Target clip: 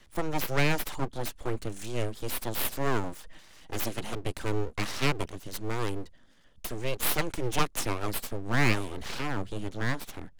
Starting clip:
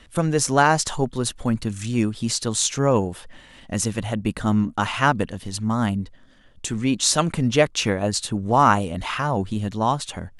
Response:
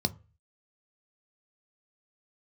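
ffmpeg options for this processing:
-filter_complex "[0:a]asettb=1/sr,asplit=3[a][b][c];[a]atrim=end=3.034[d];[b]atrim=start=3.03:end=4.15,asetpts=PTS-STARTPTS,afade=t=in:d=0.004:c=qsin,afade=t=out:st=1.116:d=0.004:c=qsin,aecho=1:1:6.4:0.57,atrim=end_sample=49392[e];[c]atrim=start=4.146[f];[d][e]acrossfade=d=0.004:c1=hsin:c2=qsin[g];[g][f]acrossfade=d=0.004:c1=qsin:c2=hsin,aeval=exprs='abs(val(0))':c=same,acrossover=split=270|540|4100[h][i][j][k];[k]dynaudnorm=f=500:g=9:m=3.5dB[l];[h][i][j][l]amix=inputs=4:normalize=0,volume=-6.5dB"

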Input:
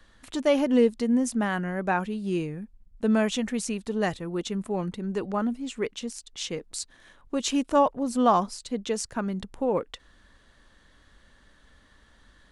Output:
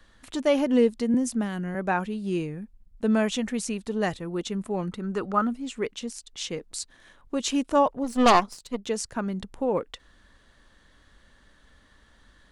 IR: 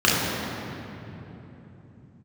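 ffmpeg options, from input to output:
-filter_complex "[0:a]asettb=1/sr,asplit=3[a][b][c];[a]atrim=end=1.144[d];[b]atrim=start=1.14:end=1.75,asetpts=PTS-STARTPTS,afade=t=in:d=0.004:c=qsin,afade=t=out:st=0.606:d=0.004:c=qsin,acrossover=split=430|3000[e][f][g];[f]acompressor=threshold=-37dB:ratio=6[h];[e][h][g]amix=inputs=3:normalize=0[i];[c]atrim=start=1.746[j];[d][i]acrossfade=d=0.004:c1=hsin:c2=qsin[k];[k][j]acrossfade=d=0.004:c1=qsin:c2=hsin,asettb=1/sr,asplit=3[l][m][n];[l]atrim=end=4.914[o];[m]atrim=start=4.91:end=5.53,asetpts=PTS-STARTPTS,afade=t=in:d=0.004:c=qsin,afade=t=out:st=0.616:d=0.004:c=qsin,equalizer=f=1.3k:w=4.1:g=12.5[p];[n]atrim=start=5.526[q];[o][p]acrossfade=d=0.004:c1=hsin:c2=qsin[r];[r][q]acrossfade=d=0.004:c1=qsin:c2=hsin,asplit=3[s][t][u];[s]afade=t=out:st=8.03:d=0.02[v];[t]aeval=exprs='0.355*(cos(1*acos(clip(val(0)/0.355,-1,1)))-cos(1*PI/2))+0.141*(cos(5*acos(clip(val(0)/0.355,-1,1)))-cos(5*PI/2))+0.0501*(cos(6*acos(clip(val(0)/0.355,-1,1)))-cos(6*PI/2))+0.126*(cos(7*acos(clip(val(0)/0.355,-1,1)))-cos(7*PI/2))':c=same,afade=t=in:st=8.03:d=0.02,afade=t=out:st=8.86:d=0.02[w];[u]afade=t=in:st=8.86:d=0.02[x];[v][w][x]amix=inputs=3:normalize=0"

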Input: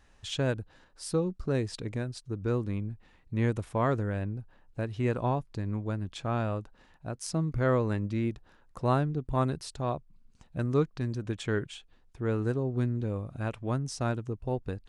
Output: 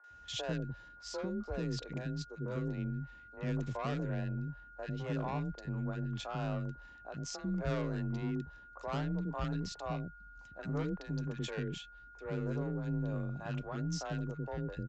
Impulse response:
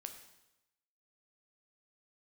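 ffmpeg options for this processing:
-filter_complex "[0:a]aresample=16000,asoftclip=type=tanh:threshold=-28dB,aresample=44100,aeval=exprs='val(0)+0.00282*sin(2*PI*1400*n/s)':c=same,acrossover=split=390|1400[a][b][c];[c]adelay=40[d];[a]adelay=100[e];[e][b][d]amix=inputs=3:normalize=0,afreqshift=27,volume=-2dB"

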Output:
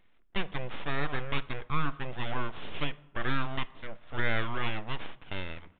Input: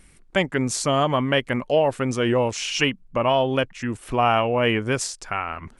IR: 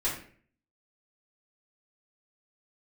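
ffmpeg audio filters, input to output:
-filter_complex "[0:a]lowshelf=f=230:g=-9,aeval=exprs='abs(val(0))':c=same,asplit=2[a][b];[1:a]atrim=start_sample=2205,asetrate=25137,aresample=44100[c];[b][c]afir=irnorm=-1:irlink=0,volume=-26dB[d];[a][d]amix=inputs=2:normalize=0,aresample=8000,aresample=44100,volume=-8dB"

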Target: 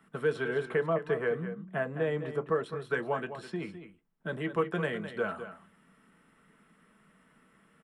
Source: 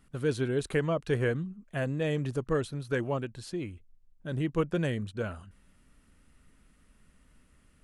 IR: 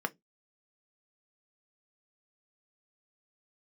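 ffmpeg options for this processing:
-filter_complex "[0:a]asettb=1/sr,asplit=3[a][b][c];[a]atrim=end=0.614[d];[b]atrim=start=0.61:end=2.66,asetpts=PTS-STARTPTS,afade=t=in:d=0.004:c=qsin,afade=t=out:st=2.046:d=0.004:c=qsin,highshelf=f=2.3k:g=-10[e];[c]atrim=start=2.656[f];[d][e]acrossfade=d=0.004:c1=hsin:c2=qsin[g];[g][f]acrossfade=d=0.004:c1=qsin:c2=hsin,acrossover=split=190|450|6300[h][i][j][k];[h]acompressor=threshold=-41dB:ratio=4[l];[i]acompressor=threshold=-45dB:ratio=4[m];[j]acompressor=threshold=-34dB:ratio=4[n];[k]acompressor=threshold=-59dB:ratio=4[o];[l][m][n][o]amix=inputs=4:normalize=0,bass=f=250:g=-5,treble=f=4k:g=-2,aecho=1:1:208:0.282[p];[1:a]atrim=start_sample=2205[q];[p][q]afir=irnorm=-1:irlink=0"

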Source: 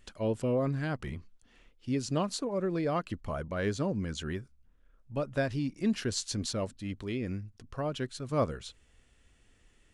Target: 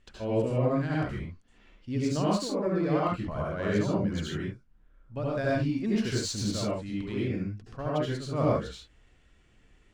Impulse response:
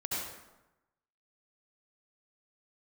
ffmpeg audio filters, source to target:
-filter_complex "[0:a]adynamicsmooth=sensitivity=8:basefreq=6.2k[a];[1:a]atrim=start_sample=2205,afade=t=out:st=0.21:d=0.01,atrim=end_sample=9702[b];[a][b]afir=irnorm=-1:irlink=0"

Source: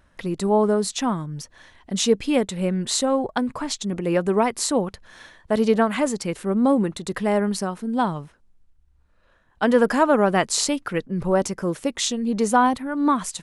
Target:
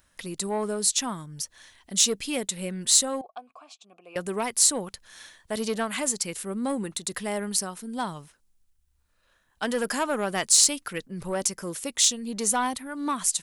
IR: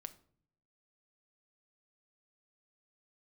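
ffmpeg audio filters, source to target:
-filter_complex "[0:a]asettb=1/sr,asplit=3[a][b][c];[a]atrim=end=3.214[d];[b]atrim=start=3.21:end=4.16,asetpts=PTS-STARTPTS,afade=t=in:d=0.004:c=qsin,afade=t=out:st=0.946:d=0.004:c=qsin,asplit=3[e][f][g];[e]bandpass=f=730:t=q:w=8,volume=0dB[h];[f]bandpass=f=1.09k:t=q:w=8,volume=-6dB[i];[g]bandpass=f=2.44k:t=q:w=8,volume=-9dB[j];[h][i][j]amix=inputs=3:normalize=0[k];[c]atrim=start=4.156[l];[d][k]acrossfade=d=0.004:c1=hsin:c2=qsin[m];[m][l]acrossfade=d=0.004:c1=qsin:c2=hsin,asoftclip=type=tanh:threshold=-9dB,crystalizer=i=6.5:c=0,volume=-10dB"

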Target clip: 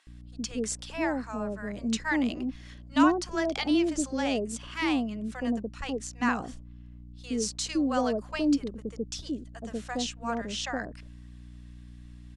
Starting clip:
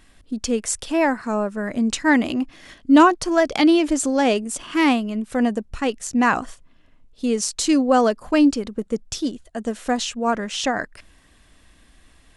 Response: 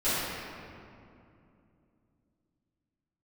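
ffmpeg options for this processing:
-filter_complex "[0:a]lowpass=5.5k,acrossover=split=2000[a][b];[b]crystalizer=i=1.5:c=0[c];[a][c]amix=inputs=2:normalize=0,aeval=exprs='val(0)+0.0158*(sin(2*PI*60*n/s)+sin(2*PI*2*60*n/s)/2+sin(2*PI*3*60*n/s)/3+sin(2*PI*4*60*n/s)/4+sin(2*PI*5*60*n/s)/5)':c=same,acrossover=split=710[d][e];[d]adelay=70[f];[f][e]amix=inputs=2:normalize=0,volume=-9dB"

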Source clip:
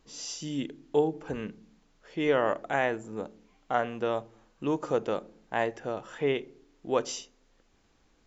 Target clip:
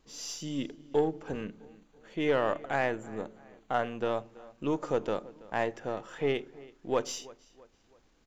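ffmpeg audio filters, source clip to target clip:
-filter_complex "[0:a]aeval=exprs='if(lt(val(0),0),0.708*val(0),val(0))':c=same,asettb=1/sr,asplit=3[a][b][c];[a]atrim=end=1.434[d];[b]atrim=start=1.43:end=4.01,asetpts=PTS-STARTPTS,afade=t=in:d=0.004:c=qsin,afade=t=out:st=2.576:d=0.004:c=qsin,bandreject=f=5.2k:w=5.7[e];[c]atrim=start=4.006[f];[d][e]acrossfade=d=0.004:c1=hsin:c2=qsin[g];[g][f]acrossfade=d=0.004:c1=qsin:c2=hsin,asoftclip=type=tanh:threshold=-14dB,asplit=2[h][i];[i]adelay=329,lowpass=f=3.6k:p=1,volume=-20.5dB,asplit=2[j][k];[k]adelay=329,lowpass=f=3.6k:p=1,volume=0.44,asplit=2[l][m];[m]adelay=329,lowpass=f=3.6k:p=1,volume=0.44[n];[h][j][l][n]amix=inputs=4:normalize=0"

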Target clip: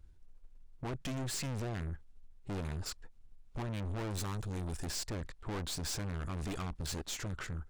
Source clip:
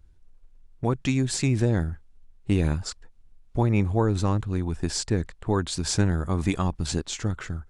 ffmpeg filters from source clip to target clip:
-filter_complex "[0:a]asettb=1/sr,asplit=3[a][b][c];[a]atrim=end=4.104[d];[b]atrim=start=4.1:end=4.85,asetpts=PTS-STARTPTS,afade=t=in:d=0.004:c=qsin,afade=t=out:st=0.746:d=0.004:c=qsin,aemphasis=mode=production:type=75kf[e];[c]atrim=start=4.846[f];[d][e]acrossfade=d=0.004:c1=hsin:c2=qsin[g];[g][f]acrossfade=d=0.004:c1=qsin:c2=hsin,aeval=exprs='(tanh(56.2*val(0)+0.5)-tanh(0.5))/56.2':c=same,volume=-1dB"

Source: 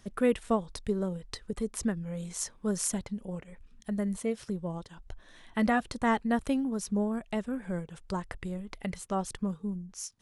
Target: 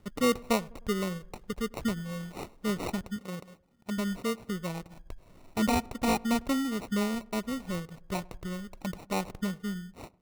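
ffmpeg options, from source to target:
-filter_complex "[0:a]asettb=1/sr,asplit=3[a][b][c];[a]atrim=end=3.164[d];[b]atrim=start=3.16:end=3.98,asetpts=PTS-STARTPTS,afade=t=in:d=0.004:c=qsin,afade=t=out:st=0.816:d=0.004:c=qsin,highpass=130[e];[c]atrim=start=3.976[f];[d][e]acrossfade=d=0.004:c1=hsin:c2=qsin[g];[g][f]acrossfade=d=0.004:c1=qsin:c2=hsin,equalizer=f=5.7k:t=o:w=0.6:g=-12,acrusher=samples=27:mix=1:aa=0.000001,asplit=2[h][i];[i]adelay=102,lowpass=f=1.3k:p=1,volume=-23dB,asplit=2[j][k];[k]adelay=102,lowpass=f=1.3k:p=1,volume=0.54,asplit=2[l][m];[m]adelay=102,lowpass=f=1.3k:p=1,volume=0.54,asplit=2[n][o];[o]adelay=102,lowpass=f=1.3k:p=1,volume=0.54[p];[j][l][n][p]amix=inputs=4:normalize=0[q];[h][q]amix=inputs=2:normalize=0"

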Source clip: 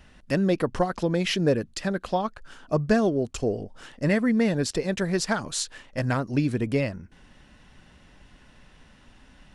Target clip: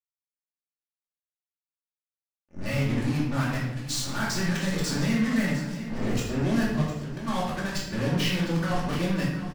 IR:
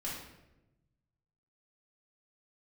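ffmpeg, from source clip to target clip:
-filter_complex "[0:a]areverse,lowpass=8.2k,equalizer=f=460:t=o:w=2.1:g=-10.5,acompressor=threshold=-31dB:ratio=4,acrusher=bits=5:mix=0:aa=0.5,aecho=1:1:706|1412|2118|2824|3530:0.224|0.11|0.0538|0.0263|0.0129[a];[1:a]atrim=start_sample=2205[b];[a][b]afir=irnorm=-1:irlink=0,volume=4dB"

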